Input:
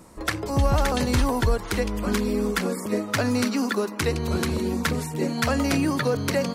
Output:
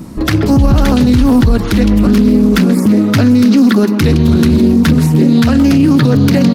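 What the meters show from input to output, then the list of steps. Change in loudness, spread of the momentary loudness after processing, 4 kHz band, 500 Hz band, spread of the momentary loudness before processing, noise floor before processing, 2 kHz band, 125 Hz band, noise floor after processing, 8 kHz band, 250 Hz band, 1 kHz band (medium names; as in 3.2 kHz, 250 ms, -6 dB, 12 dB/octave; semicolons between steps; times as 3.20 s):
+15.0 dB, 2 LU, +9.0 dB, +8.5 dB, 4 LU, -35 dBFS, +6.5 dB, +16.0 dB, -16 dBFS, +5.0 dB, +18.0 dB, +6.0 dB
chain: graphic EQ 125/250/500/1000/2000/8000 Hz +5/+8/-7/-6/-5/-9 dB; speakerphone echo 130 ms, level -14 dB; loudness maximiser +18.5 dB; loudspeaker Doppler distortion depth 0.16 ms; trim -1 dB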